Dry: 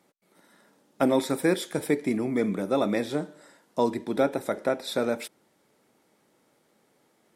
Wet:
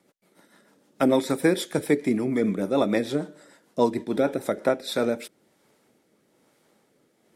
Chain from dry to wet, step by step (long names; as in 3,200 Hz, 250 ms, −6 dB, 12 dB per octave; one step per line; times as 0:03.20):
rotating-speaker cabinet horn 6.7 Hz, later 1.1 Hz, at 0:04.23
level +4 dB